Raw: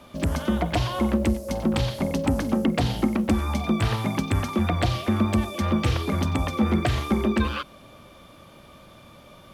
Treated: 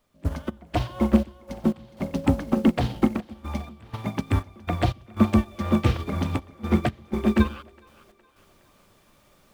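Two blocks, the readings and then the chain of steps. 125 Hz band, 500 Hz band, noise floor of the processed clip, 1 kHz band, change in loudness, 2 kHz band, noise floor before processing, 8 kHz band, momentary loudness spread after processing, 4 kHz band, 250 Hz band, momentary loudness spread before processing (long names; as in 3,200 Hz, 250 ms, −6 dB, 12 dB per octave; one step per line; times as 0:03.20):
−2.0 dB, −2.0 dB, −60 dBFS, −3.0 dB, −1.0 dB, −4.0 dB, −49 dBFS, can't be measured, 12 LU, −7.0 dB, 0.0 dB, 3 LU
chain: high-shelf EQ 5,200 Hz −10.5 dB
background noise pink −48 dBFS
gate pattern ".x.xx.x.xxxxx" 61 BPM −12 dB
on a send: echo with a time of its own for lows and highs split 330 Hz, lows 134 ms, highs 414 ms, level −12 dB
on the sum: expander for the loud parts 2.5 to 1, over −30 dBFS
level +5.5 dB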